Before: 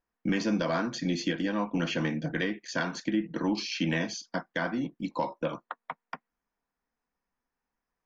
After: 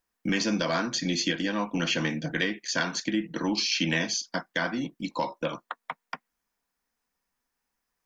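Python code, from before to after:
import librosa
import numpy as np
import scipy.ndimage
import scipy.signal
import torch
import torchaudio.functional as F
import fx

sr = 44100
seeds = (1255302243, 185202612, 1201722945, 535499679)

y = fx.high_shelf(x, sr, hz=2300.0, db=11.0)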